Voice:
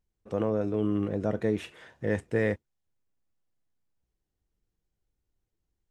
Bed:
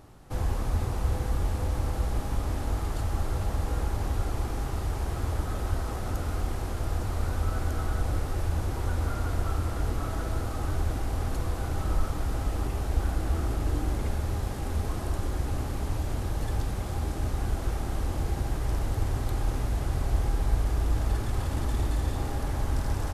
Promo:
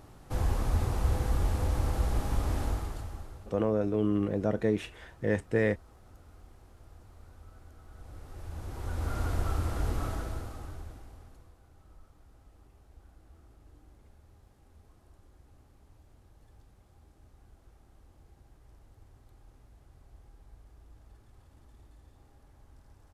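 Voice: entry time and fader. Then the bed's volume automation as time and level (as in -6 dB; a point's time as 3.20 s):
3.20 s, 0.0 dB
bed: 2.64 s -0.5 dB
3.62 s -24 dB
7.82 s -24 dB
9.19 s -2 dB
10.06 s -2 dB
11.60 s -29 dB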